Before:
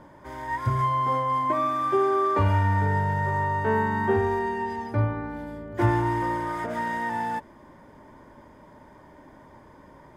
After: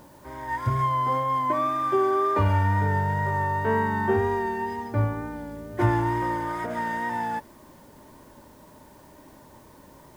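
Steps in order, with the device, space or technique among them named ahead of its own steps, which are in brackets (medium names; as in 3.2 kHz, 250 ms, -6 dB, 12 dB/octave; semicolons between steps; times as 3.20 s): plain cassette with noise reduction switched in (tape noise reduction on one side only decoder only; wow and flutter 27 cents; white noise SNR 34 dB)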